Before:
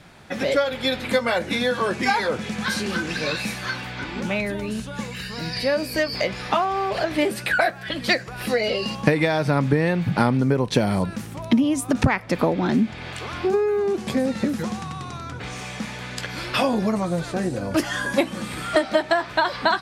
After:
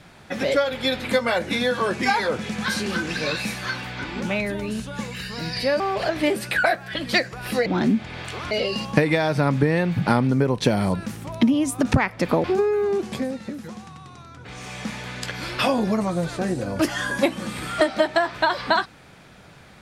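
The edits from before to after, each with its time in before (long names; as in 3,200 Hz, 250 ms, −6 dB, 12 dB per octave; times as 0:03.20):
0:05.80–0:06.75: remove
0:12.54–0:13.39: move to 0:08.61
0:13.89–0:15.80: duck −9.5 dB, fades 0.48 s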